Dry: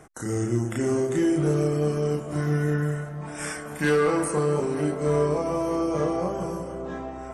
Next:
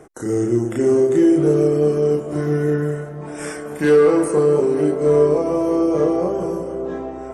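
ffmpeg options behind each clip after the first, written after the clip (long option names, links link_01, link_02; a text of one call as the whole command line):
ffmpeg -i in.wav -af "equalizer=frequency=400:width=1.1:gain=10.5" out.wav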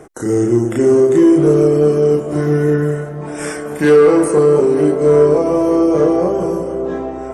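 ffmpeg -i in.wav -af "acontrast=34" out.wav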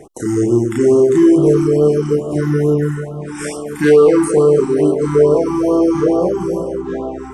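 ffmpeg -i in.wav -af "afftfilt=real='re*(1-between(b*sr/1024,520*pow(2000/520,0.5+0.5*sin(2*PI*2.3*pts/sr))/1.41,520*pow(2000/520,0.5+0.5*sin(2*PI*2.3*pts/sr))*1.41))':imag='im*(1-between(b*sr/1024,520*pow(2000/520,0.5+0.5*sin(2*PI*2.3*pts/sr))/1.41,520*pow(2000/520,0.5+0.5*sin(2*PI*2.3*pts/sr))*1.41))':win_size=1024:overlap=0.75" out.wav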